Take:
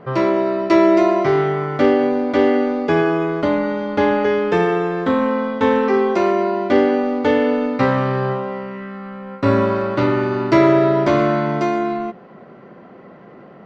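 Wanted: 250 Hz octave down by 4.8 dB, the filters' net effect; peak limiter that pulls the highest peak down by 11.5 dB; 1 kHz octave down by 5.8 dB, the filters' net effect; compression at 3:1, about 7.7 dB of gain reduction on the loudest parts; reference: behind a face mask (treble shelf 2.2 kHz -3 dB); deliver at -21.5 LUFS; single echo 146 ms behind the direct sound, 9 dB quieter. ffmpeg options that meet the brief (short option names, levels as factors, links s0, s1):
-af "equalizer=f=250:t=o:g=-6,equalizer=f=1000:t=o:g=-7,acompressor=threshold=0.0708:ratio=3,alimiter=limit=0.0708:level=0:latency=1,highshelf=f=2200:g=-3,aecho=1:1:146:0.355,volume=2.82"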